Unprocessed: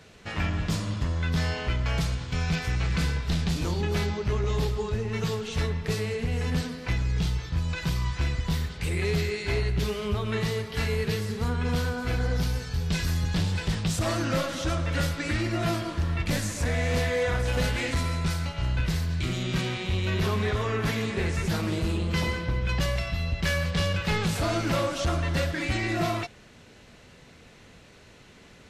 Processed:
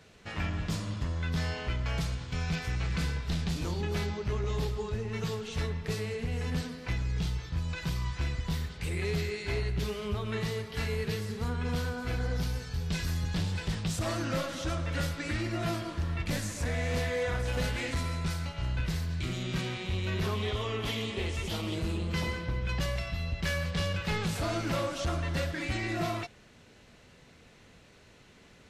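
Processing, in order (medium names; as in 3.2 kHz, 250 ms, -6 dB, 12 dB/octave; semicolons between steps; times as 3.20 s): 20.35–21.75 s: graphic EQ with 31 bands 160 Hz -12 dB, 1.6 kHz -10 dB, 3.15 kHz +11 dB; trim -5 dB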